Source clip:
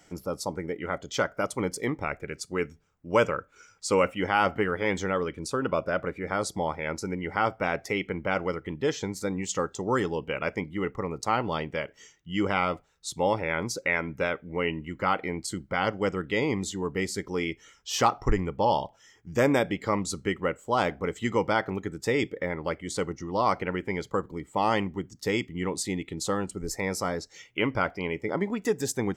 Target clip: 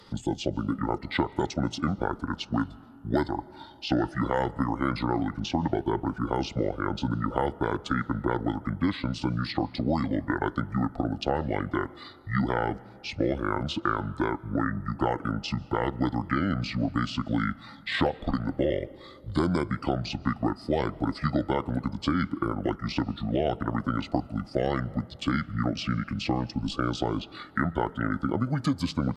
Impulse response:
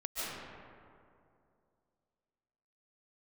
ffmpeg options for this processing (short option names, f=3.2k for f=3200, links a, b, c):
-filter_complex "[0:a]acrossover=split=220|4400[a][b][c];[a]acompressor=threshold=-42dB:ratio=4[d];[b]acompressor=threshold=-31dB:ratio=4[e];[c]acompressor=threshold=-49dB:ratio=4[f];[d][e][f]amix=inputs=3:normalize=0,asetrate=27781,aresample=44100,atempo=1.5874,asplit=2[g][h];[1:a]atrim=start_sample=2205[i];[h][i]afir=irnorm=-1:irlink=0,volume=-25dB[j];[g][j]amix=inputs=2:normalize=0,volume=6.5dB"